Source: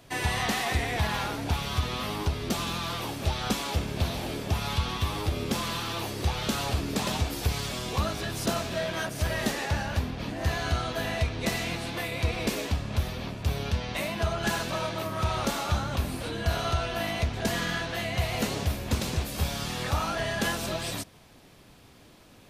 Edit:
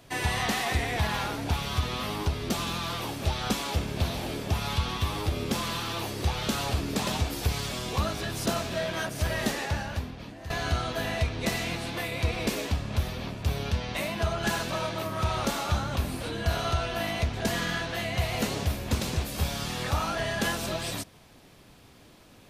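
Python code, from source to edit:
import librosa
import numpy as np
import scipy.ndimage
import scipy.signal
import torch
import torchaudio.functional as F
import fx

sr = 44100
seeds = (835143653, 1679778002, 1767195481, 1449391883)

y = fx.edit(x, sr, fx.fade_out_to(start_s=9.54, length_s=0.96, floor_db=-14.0), tone=tone)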